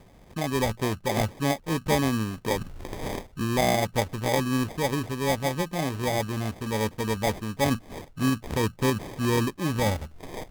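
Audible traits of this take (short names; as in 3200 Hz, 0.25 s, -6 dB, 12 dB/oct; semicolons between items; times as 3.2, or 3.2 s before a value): aliases and images of a low sample rate 1400 Hz, jitter 0%; Opus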